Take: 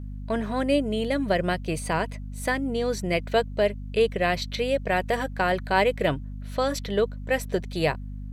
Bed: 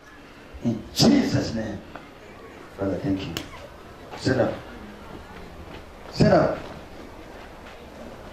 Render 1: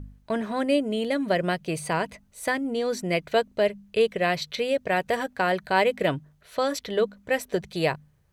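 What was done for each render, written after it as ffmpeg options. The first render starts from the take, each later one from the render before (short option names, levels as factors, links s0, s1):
-af "bandreject=f=50:t=h:w=4,bandreject=f=100:t=h:w=4,bandreject=f=150:t=h:w=4,bandreject=f=200:t=h:w=4,bandreject=f=250:t=h:w=4"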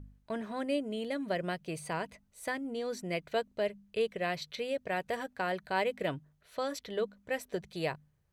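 -af "volume=0.335"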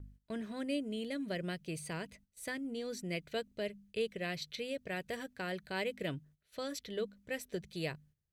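-af "agate=range=0.251:threshold=0.00126:ratio=16:detection=peak,equalizer=f=880:w=0.91:g=-12"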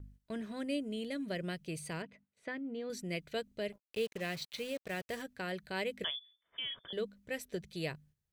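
-filter_complex "[0:a]asettb=1/sr,asplit=3[s0][s1][s2];[s0]atrim=end=2.024[s3];[s1]atrim=start=2.02:end=2.9,asetpts=PTS-STARTPTS,afade=t=in:d=0.004:c=qsin,afade=t=out:st=0.876:d=0.004:c=qsin,highpass=150,lowpass=2400[s4];[s2]atrim=start=2.896[s5];[s3][s4]acrossfade=d=0.004:c1=hsin:c2=qsin[s6];[s6][s5]acrossfade=d=0.004:c1=qsin:c2=hsin,asettb=1/sr,asplit=3[s7][s8][s9];[s7]atrim=end=3.724[s10];[s8]atrim=start=3.72:end=5.22,asetpts=PTS-STARTPTS,afade=t=in:d=0.004:c=qsin,afade=t=out:st=1.496:d=0.004:c=qsin,acrusher=bits=7:mix=0:aa=0.5[s11];[s9]atrim=start=5.216[s12];[s10][s11]acrossfade=d=0.004:c1=hsin:c2=qsin[s13];[s13][s12]acrossfade=d=0.004:c1=qsin:c2=hsin,asettb=1/sr,asplit=3[s14][s15][s16];[s14]atrim=end=6.044[s17];[s15]atrim=start=6.04:end=6.93,asetpts=PTS-STARTPTS,afade=t=in:d=0.004:c=qsin,afade=t=out:st=0.886:d=0.004:c=qsin,lowpass=f=3100:t=q:w=0.5098,lowpass=f=3100:t=q:w=0.6013,lowpass=f=3100:t=q:w=0.9,lowpass=f=3100:t=q:w=2.563,afreqshift=-3600[s18];[s16]atrim=start=6.926[s19];[s17][s18]acrossfade=d=0.004:c1=hsin:c2=qsin[s20];[s20][s19]acrossfade=d=0.004:c1=qsin:c2=hsin"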